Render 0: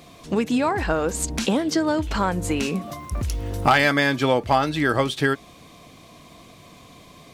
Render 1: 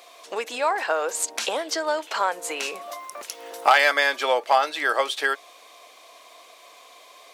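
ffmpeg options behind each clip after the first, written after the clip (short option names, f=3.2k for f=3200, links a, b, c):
-af "highpass=f=510:w=0.5412,highpass=f=510:w=1.3066,volume=1dB"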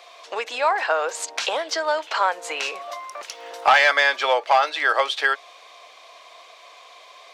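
-filter_complex "[0:a]asoftclip=type=hard:threshold=-11.5dB,acrossover=split=450 6300:gain=0.224 1 0.158[a][b][c];[a][b][c]amix=inputs=3:normalize=0,volume=3.5dB"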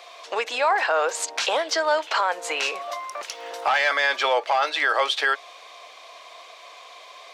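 -af "alimiter=limit=-14dB:level=0:latency=1:release=15,volume=2dB"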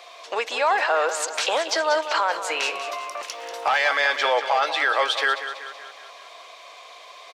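-af "aecho=1:1:189|378|567|756|945|1134:0.299|0.155|0.0807|0.042|0.0218|0.0114"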